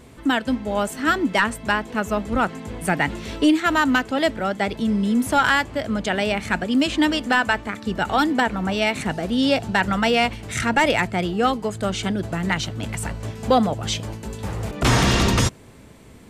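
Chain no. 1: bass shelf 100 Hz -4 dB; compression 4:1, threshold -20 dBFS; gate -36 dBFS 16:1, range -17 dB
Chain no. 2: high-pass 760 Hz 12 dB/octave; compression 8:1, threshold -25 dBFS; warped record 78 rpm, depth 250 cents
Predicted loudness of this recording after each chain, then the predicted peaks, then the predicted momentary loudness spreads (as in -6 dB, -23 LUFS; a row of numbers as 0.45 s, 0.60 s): -25.5 LUFS, -30.5 LUFS; -9.5 dBFS, -13.0 dBFS; 5 LU, 6 LU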